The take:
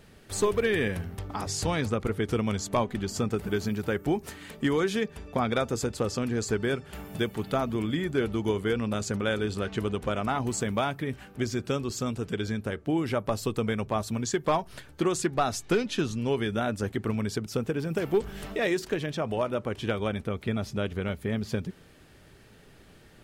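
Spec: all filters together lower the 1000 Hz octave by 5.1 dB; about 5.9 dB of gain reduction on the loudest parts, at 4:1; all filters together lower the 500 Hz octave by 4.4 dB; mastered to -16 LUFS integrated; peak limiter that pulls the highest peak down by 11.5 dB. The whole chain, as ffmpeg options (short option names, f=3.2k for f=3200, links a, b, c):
-af "equalizer=f=500:t=o:g=-4.5,equalizer=f=1k:t=o:g=-5.5,acompressor=threshold=-31dB:ratio=4,volume=25dB,alimiter=limit=-7dB:level=0:latency=1"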